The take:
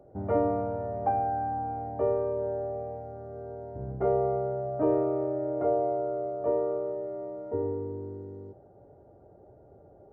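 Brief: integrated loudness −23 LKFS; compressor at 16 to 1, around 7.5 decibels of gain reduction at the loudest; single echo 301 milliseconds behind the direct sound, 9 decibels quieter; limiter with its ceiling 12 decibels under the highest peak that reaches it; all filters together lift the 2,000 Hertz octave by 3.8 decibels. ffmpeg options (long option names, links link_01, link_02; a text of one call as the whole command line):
ffmpeg -i in.wav -af "equalizer=frequency=2000:width_type=o:gain=5.5,acompressor=threshold=-28dB:ratio=16,alimiter=level_in=8.5dB:limit=-24dB:level=0:latency=1,volume=-8.5dB,aecho=1:1:301:0.355,volume=17dB" out.wav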